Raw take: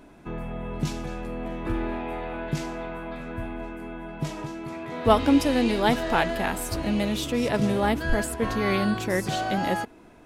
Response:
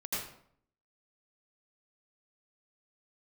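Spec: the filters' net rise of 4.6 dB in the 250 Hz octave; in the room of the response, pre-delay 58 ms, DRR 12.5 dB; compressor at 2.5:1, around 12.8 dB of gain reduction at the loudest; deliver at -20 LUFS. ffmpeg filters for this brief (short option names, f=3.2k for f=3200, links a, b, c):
-filter_complex "[0:a]equalizer=f=250:t=o:g=5.5,acompressor=threshold=-30dB:ratio=2.5,asplit=2[a][b];[1:a]atrim=start_sample=2205,adelay=58[c];[b][c]afir=irnorm=-1:irlink=0,volume=-16dB[d];[a][d]amix=inputs=2:normalize=0,volume=11.5dB"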